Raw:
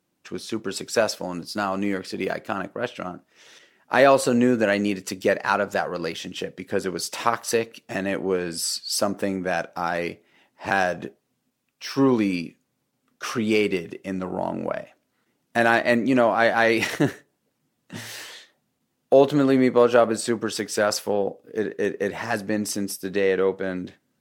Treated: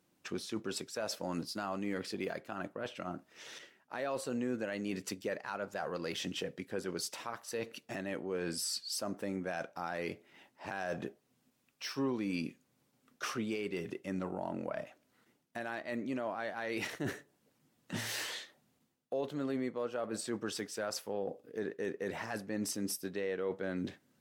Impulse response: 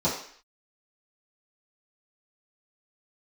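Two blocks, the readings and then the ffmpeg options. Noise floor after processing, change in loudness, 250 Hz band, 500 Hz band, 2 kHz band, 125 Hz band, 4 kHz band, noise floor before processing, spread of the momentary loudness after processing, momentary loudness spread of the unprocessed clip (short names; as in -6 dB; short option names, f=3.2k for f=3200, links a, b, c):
-75 dBFS, -15.5 dB, -14.0 dB, -16.5 dB, -16.0 dB, -12.5 dB, -10.5 dB, -75 dBFS, 7 LU, 15 LU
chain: -af "areverse,acompressor=threshold=-30dB:ratio=8,areverse,alimiter=level_in=2.5dB:limit=-24dB:level=0:latency=1:release=387,volume=-2.5dB"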